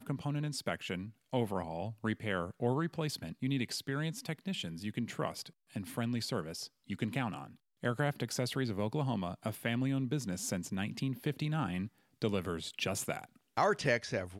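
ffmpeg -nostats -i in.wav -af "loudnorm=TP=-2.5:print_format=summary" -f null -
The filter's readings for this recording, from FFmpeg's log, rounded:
Input Integrated:    -36.2 LUFS
Input True Peak:     -15.3 dBTP
Input LRA:             3.4 LU
Input Threshold:     -46.2 LUFS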